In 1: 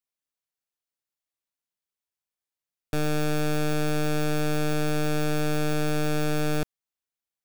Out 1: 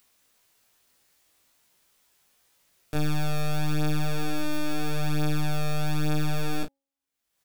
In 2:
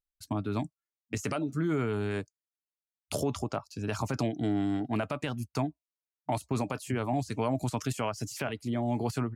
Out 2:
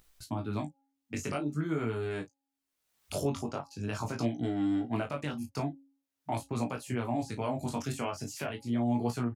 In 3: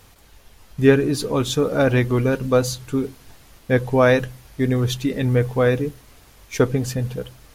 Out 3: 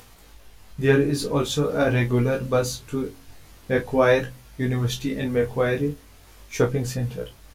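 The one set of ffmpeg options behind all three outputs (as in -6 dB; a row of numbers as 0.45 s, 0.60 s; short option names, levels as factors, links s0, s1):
-filter_complex "[0:a]bandreject=f=274.4:t=h:w=4,bandreject=f=548.8:t=h:w=4,bandreject=f=823.2:t=h:w=4,asplit=2[s0][s1];[s1]aecho=0:1:21|34:0.282|0.266[s2];[s0][s2]amix=inputs=2:normalize=0,acompressor=mode=upward:threshold=0.01:ratio=2.5,flanger=delay=16.5:depth=5:speed=0.44"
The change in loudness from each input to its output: -2.5 LU, -1.5 LU, -3.0 LU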